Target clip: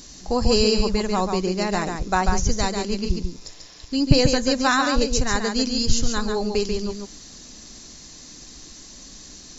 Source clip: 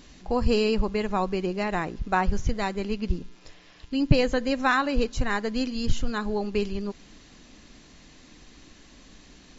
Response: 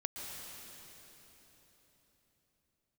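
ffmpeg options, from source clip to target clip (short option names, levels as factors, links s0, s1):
-filter_complex "[0:a]highshelf=f=3900:t=q:w=1.5:g=10.5,asplit=2[s0][s1];[1:a]atrim=start_sample=2205,atrim=end_sample=3969,adelay=141[s2];[s1][s2]afir=irnorm=-1:irlink=0,volume=0.708[s3];[s0][s3]amix=inputs=2:normalize=0,volume=1.41"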